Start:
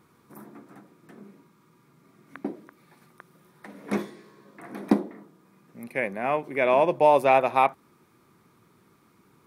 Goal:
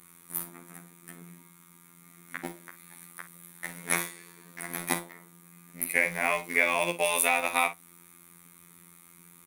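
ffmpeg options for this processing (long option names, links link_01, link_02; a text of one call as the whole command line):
ffmpeg -i in.wav -filter_complex "[0:a]equalizer=frequency=200:width_type=o:width=0.33:gain=12,equalizer=frequency=2000:width_type=o:width=0.33:gain=6,equalizer=frequency=5000:width_type=o:width=0.33:gain=-11,equalizer=frequency=10000:width_type=o:width=0.33:gain=6,acrossover=split=490|1900[link_01][link_02][link_03];[link_01]acompressor=threshold=-36dB:ratio=4[link_04];[link_02]acompressor=threshold=-30dB:ratio=4[link_05];[link_03]acompressor=threshold=-35dB:ratio=4[link_06];[link_04][link_05][link_06]amix=inputs=3:normalize=0,crystalizer=i=9:c=0,asplit=2[link_07][link_08];[link_08]acrusher=bits=4:mix=0:aa=0.000001,volume=-7dB[link_09];[link_07][link_09]amix=inputs=2:normalize=0,afftfilt=real='hypot(re,im)*cos(PI*b)':imag='0':win_size=2048:overlap=0.75,asplit=2[link_10][link_11];[link_11]aecho=0:1:34|52:0.188|0.211[link_12];[link_10][link_12]amix=inputs=2:normalize=0,volume=-2.5dB" out.wav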